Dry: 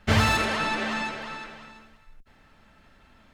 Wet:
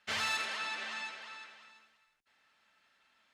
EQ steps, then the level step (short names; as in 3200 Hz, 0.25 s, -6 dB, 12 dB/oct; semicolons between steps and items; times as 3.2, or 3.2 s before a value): band-pass 7800 Hz, Q 0.53; high shelf 4600 Hz -10.5 dB; 0.0 dB